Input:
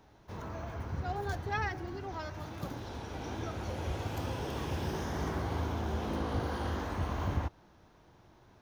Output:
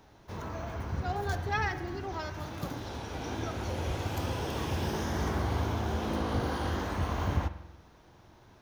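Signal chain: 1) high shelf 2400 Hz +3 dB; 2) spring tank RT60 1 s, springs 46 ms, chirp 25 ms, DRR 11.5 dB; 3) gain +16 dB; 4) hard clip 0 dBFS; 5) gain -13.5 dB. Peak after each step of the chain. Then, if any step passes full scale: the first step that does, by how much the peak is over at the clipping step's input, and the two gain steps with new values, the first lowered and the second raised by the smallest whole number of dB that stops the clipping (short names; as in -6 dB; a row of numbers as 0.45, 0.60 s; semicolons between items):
-20.5, -20.0, -4.0, -4.0, -17.5 dBFS; no overload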